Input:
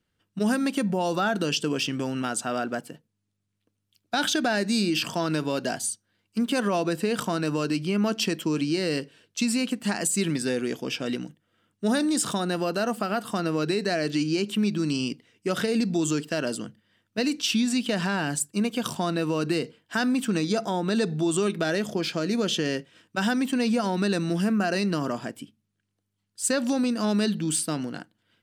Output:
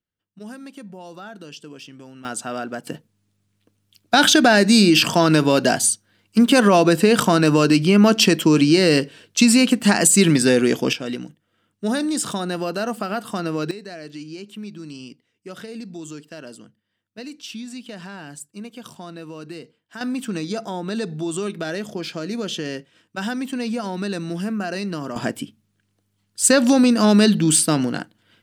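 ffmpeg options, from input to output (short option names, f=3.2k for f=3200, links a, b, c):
-af "asetnsamples=n=441:p=0,asendcmd='2.25 volume volume 0dB;2.87 volume volume 11dB;10.93 volume volume 1.5dB;13.71 volume volume -10dB;20.01 volume volume -1.5dB;25.16 volume volume 10dB',volume=-13dB"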